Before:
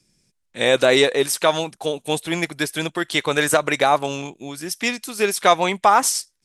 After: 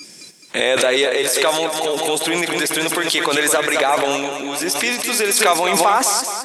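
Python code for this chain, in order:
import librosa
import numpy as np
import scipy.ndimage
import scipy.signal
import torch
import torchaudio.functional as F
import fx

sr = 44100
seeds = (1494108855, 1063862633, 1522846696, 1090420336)

p1 = scipy.signal.sosfilt(scipy.signal.butter(2, 330.0, 'highpass', fs=sr, output='sos'), x)
p2 = fx.over_compress(p1, sr, threshold_db=-27.0, ratio=-1.0)
p3 = p1 + F.gain(torch.from_numpy(p2), 0.5).numpy()
p4 = fx.noise_reduce_blind(p3, sr, reduce_db=23)
p5 = fx.echo_feedback(p4, sr, ms=212, feedback_pct=56, wet_db=-8.5)
p6 = fx.pre_swell(p5, sr, db_per_s=30.0)
y = F.gain(torch.from_numpy(p6), -2.0).numpy()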